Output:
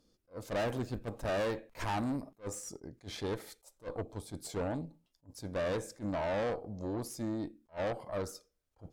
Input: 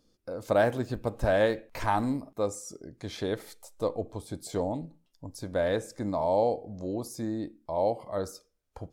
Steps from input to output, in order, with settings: tube stage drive 30 dB, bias 0.5; attack slew limiter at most 330 dB/s

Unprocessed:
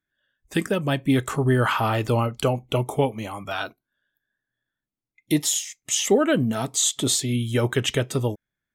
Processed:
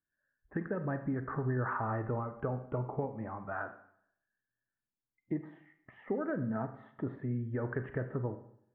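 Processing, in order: Chebyshev low-pass 1800 Hz, order 5; compressor, threshold -23 dBFS, peak gain reduction 9 dB; Schroeder reverb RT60 0.68 s, combs from 32 ms, DRR 9 dB; gain -8 dB

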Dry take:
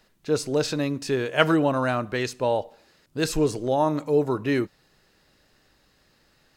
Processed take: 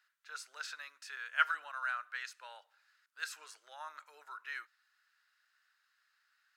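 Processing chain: ladder high-pass 1300 Hz, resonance 65%; gain -4.5 dB

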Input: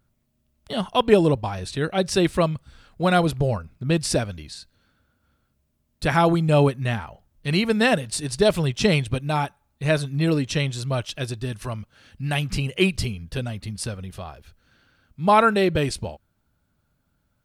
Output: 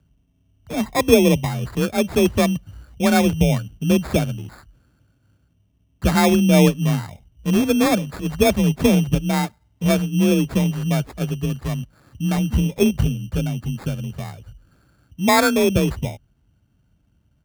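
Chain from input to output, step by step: tilt -2.5 dB/oct; frequency shift +33 Hz; sample-and-hold 15×; gain -1 dB

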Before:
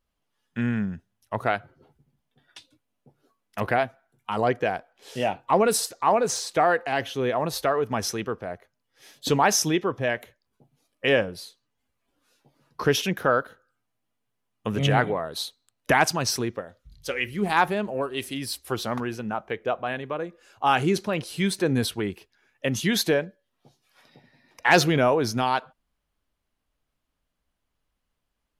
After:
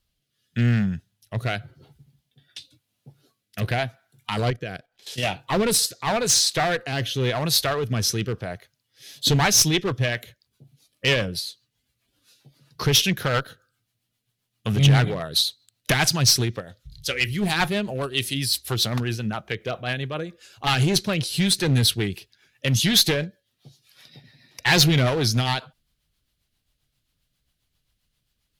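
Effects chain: high shelf 8500 Hz +9.5 dB; 4.5–5.23 level quantiser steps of 15 dB; rotary speaker horn 0.9 Hz, later 7.5 Hz, at 8.82; one-sided clip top -23.5 dBFS; graphic EQ 125/250/500/1000/4000 Hz +8/-4/-4/-5/+8 dB; soft clip -12.5 dBFS, distortion -21 dB; gain +6 dB

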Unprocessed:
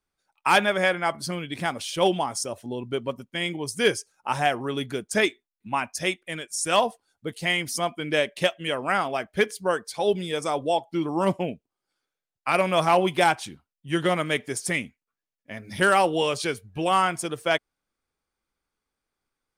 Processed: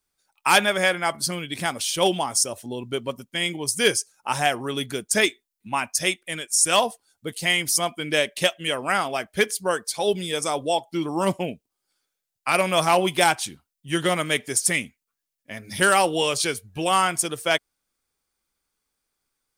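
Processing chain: high shelf 4000 Hz +12 dB

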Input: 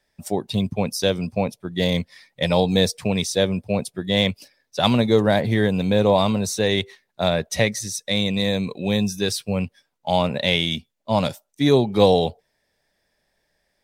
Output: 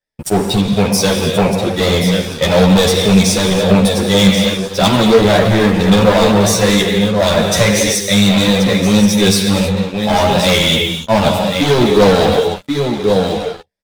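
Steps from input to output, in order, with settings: non-linear reverb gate 0.32 s flat, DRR 5.5 dB; vibrato 4.5 Hz 20 cents; echo 1.08 s -10 dB; sample leveller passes 5; ensemble effect; gain -2.5 dB

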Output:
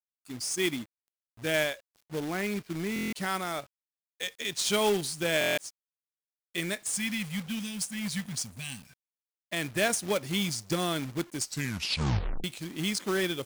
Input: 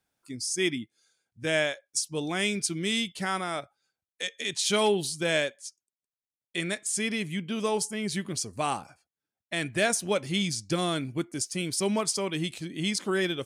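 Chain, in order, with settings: 1.88–3.16 LPF 2100 Hz 24 dB/oct; 6.87–9.04 spectral gain 260–1500 Hz -27 dB; companded quantiser 4-bit; 11.38 tape stop 1.06 s; stuck buffer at 2.94/5.39/6.2, samples 1024, times 7; gain -2 dB

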